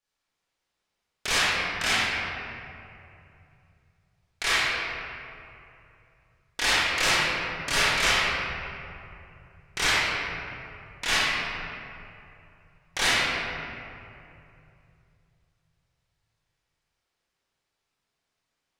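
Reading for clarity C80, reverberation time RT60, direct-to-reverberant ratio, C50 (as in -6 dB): -2.0 dB, 2.7 s, -10.5 dB, -5.0 dB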